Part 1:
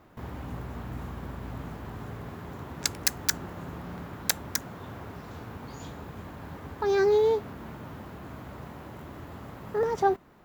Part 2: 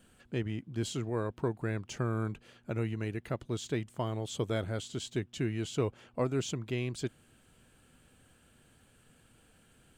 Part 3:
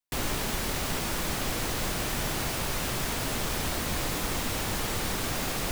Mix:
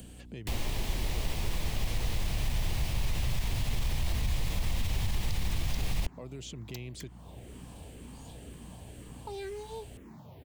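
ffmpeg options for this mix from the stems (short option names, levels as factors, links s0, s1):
-filter_complex "[0:a]asplit=2[s0][s1];[s1]afreqshift=-2[s2];[s0][s2]amix=inputs=2:normalize=1,adelay=2450,volume=0.531[s3];[1:a]acompressor=mode=upward:threshold=0.00891:ratio=2.5,alimiter=level_in=2.11:limit=0.0631:level=0:latency=1:release=89,volume=0.473,volume=1.06,asplit=2[s4][s5];[2:a]asubboost=boost=9.5:cutoff=120,adelay=350,volume=1.33[s6];[s5]apad=whole_len=568547[s7];[s3][s7]sidechaincompress=threshold=0.00708:ratio=4:attack=16:release=303[s8];[s4][s6]amix=inputs=2:normalize=0,aeval=exprs='val(0)+0.00355*(sin(2*PI*60*n/s)+sin(2*PI*2*60*n/s)/2+sin(2*PI*3*60*n/s)/3+sin(2*PI*4*60*n/s)/4+sin(2*PI*5*60*n/s)/5)':c=same,alimiter=limit=0.266:level=0:latency=1:release=40,volume=1[s9];[s8][s9]amix=inputs=2:normalize=0,equalizer=f=1400:w=2:g=-13,acrossover=split=120|810|4100[s10][s11][s12][s13];[s10]acompressor=threshold=0.0398:ratio=4[s14];[s11]acompressor=threshold=0.00708:ratio=4[s15];[s12]acompressor=threshold=0.00794:ratio=4[s16];[s13]acompressor=threshold=0.00398:ratio=4[s17];[s14][s15][s16][s17]amix=inputs=4:normalize=0"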